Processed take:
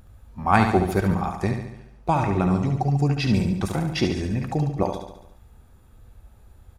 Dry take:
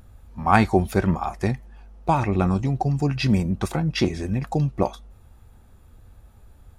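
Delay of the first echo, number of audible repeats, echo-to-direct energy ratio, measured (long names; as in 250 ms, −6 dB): 71 ms, 6, −5.0 dB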